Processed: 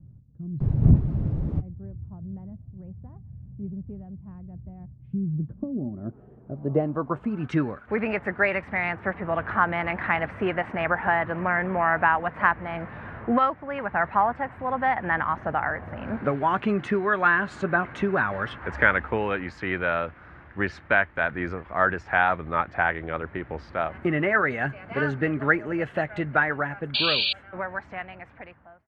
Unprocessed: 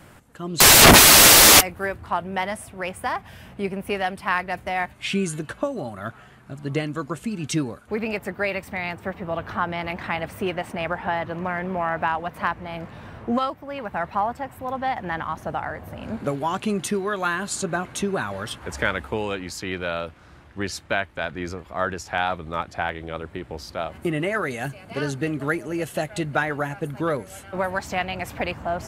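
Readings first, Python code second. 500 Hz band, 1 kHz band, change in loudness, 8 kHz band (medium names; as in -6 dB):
-2.0 dB, -1.0 dB, -4.5 dB, under -40 dB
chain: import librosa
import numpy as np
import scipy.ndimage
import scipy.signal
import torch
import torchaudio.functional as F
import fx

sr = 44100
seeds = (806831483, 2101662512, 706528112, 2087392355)

y = fx.fade_out_tail(x, sr, length_s=3.34)
y = fx.filter_sweep_lowpass(y, sr, from_hz=130.0, to_hz=1800.0, start_s=5.18, end_s=7.67, q=2.0)
y = fx.spec_paint(y, sr, seeds[0], shape='noise', start_s=26.94, length_s=0.39, low_hz=2300.0, high_hz=4700.0, level_db=-24.0)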